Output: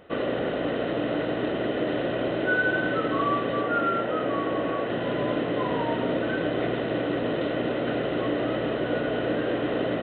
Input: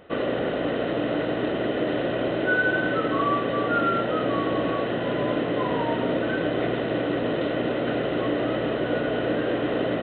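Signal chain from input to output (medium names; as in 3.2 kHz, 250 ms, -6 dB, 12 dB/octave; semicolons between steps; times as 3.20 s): 3.61–4.90 s: tone controls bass -4 dB, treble -10 dB; trim -1.5 dB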